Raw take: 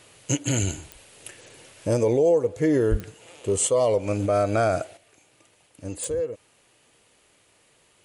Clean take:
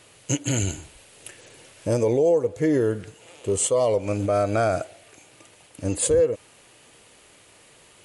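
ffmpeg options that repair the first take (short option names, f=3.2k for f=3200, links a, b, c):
-filter_complex "[0:a]adeclick=t=4,asplit=3[a][b][c];[a]afade=t=out:st=2.9:d=0.02[d];[b]highpass=f=140:w=0.5412,highpass=f=140:w=1.3066,afade=t=in:st=2.9:d=0.02,afade=t=out:st=3.02:d=0.02[e];[c]afade=t=in:st=3.02:d=0.02[f];[d][e][f]amix=inputs=3:normalize=0,asetnsamples=n=441:p=0,asendcmd='4.97 volume volume 8dB',volume=0dB"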